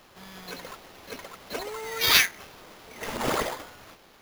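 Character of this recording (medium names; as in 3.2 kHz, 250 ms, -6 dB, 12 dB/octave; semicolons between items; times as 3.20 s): aliases and images of a low sample rate 8.3 kHz, jitter 0%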